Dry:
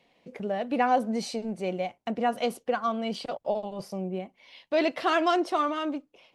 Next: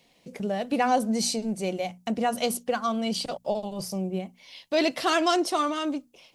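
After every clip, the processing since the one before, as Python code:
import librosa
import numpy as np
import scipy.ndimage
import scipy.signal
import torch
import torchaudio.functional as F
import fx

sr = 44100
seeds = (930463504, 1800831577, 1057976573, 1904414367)

y = fx.bass_treble(x, sr, bass_db=7, treble_db=15)
y = fx.hum_notches(y, sr, base_hz=60, count=4)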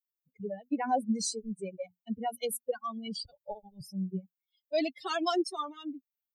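y = fx.bin_expand(x, sr, power=3.0)
y = fx.peak_eq(y, sr, hz=1900.0, db=-6.5, octaves=1.8)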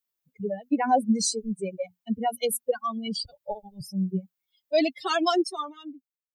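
y = fx.fade_out_tail(x, sr, length_s=1.17)
y = y * 10.0 ** (7.0 / 20.0)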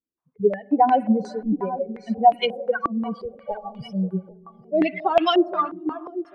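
y = fx.echo_feedback(x, sr, ms=798, feedback_pct=31, wet_db=-16.0)
y = fx.rev_spring(y, sr, rt60_s=2.8, pass_ms=(45,), chirp_ms=70, drr_db=18.0)
y = fx.filter_held_lowpass(y, sr, hz=5.6, low_hz=310.0, high_hz=2700.0)
y = y * 10.0 ** (2.0 / 20.0)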